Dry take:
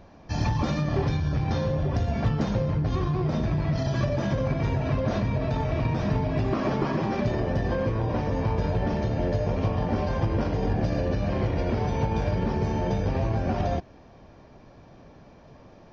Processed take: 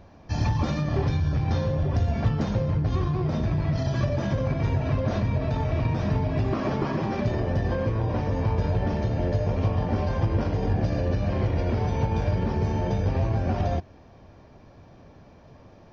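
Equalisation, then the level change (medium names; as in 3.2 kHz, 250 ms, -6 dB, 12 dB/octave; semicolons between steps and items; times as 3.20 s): peaking EQ 88 Hz +5.5 dB 0.66 oct; -1.0 dB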